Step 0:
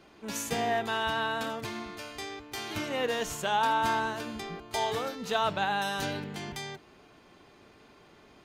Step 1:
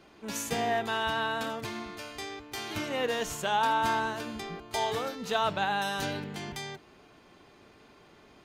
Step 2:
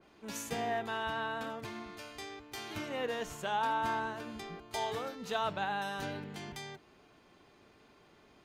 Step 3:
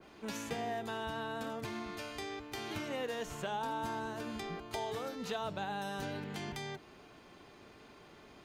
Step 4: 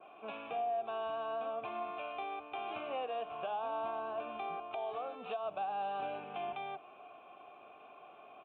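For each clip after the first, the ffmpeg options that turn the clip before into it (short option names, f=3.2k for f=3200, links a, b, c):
-af anull
-af "adynamicequalizer=threshold=0.00562:dfrequency=2800:dqfactor=0.7:tfrequency=2800:tqfactor=0.7:attack=5:release=100:ratio=0.375:range=3.5:mode=cutabove:tftype=highshelf,volume=-5.5dB"
-filter_complex "[0:a]acrossover=split=610|4500[a][b][c];[a]acompressor=threshold=-45dB:ratio=4[d];[b]acompressor=threshold=-49dB:ratio=4[e];[c]acompressor=threshold=-59dB:ratio=4[f];[d][e][f]amix=inputs=3:normalize=0,volume=5.5dB"
-filter_complex "[0:a]aresample=8000,aresample=44100,asplit=3[a][b][c];[a]bandpass=f=730:t=q:w=8,volume=0dB[d];[b]bandpass=f=1.09k:t=q:w=8,volume=-6dB[e];[c]bandpass=f=2.44k:t=q:w=8,volume=-9dB[f];[d][e][f]amix=inputs=3:normalize=0,alimiter=level_in=18.5dB:limit=-24dB:level=0:latency=1:release=218,volume=-18.5dB,volume=12.5dB"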